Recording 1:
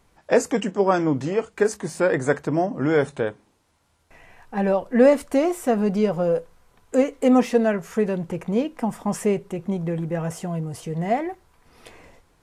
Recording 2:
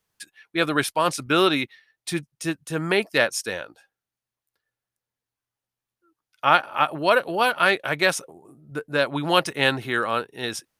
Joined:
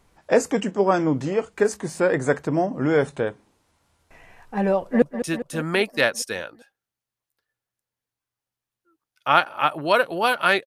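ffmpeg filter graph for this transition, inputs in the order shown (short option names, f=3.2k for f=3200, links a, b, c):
-filter_complex "[0:a]apad=whole_dur=10.66,atrim=end=10.66,atrim=end=5.022[a];[1:a]atrim=start=2.188:end=7.83[b];[a][b]acrossfade=d=0.004:c1=hsin:c2=hsin,asplit=2[c][d];[d]afade=t=in:st=4.73:d=0.01,afade=t=out:st=5.02:d=0.01,aecho=0:1:200|400|600|800|1000|1200|1400|1600:0.298538|0.19405|0.126132|0.0819861|0.0532909|0.0346391|0.0225154|0.014635[e];[c][e]amix=inputs=2:normalize=0"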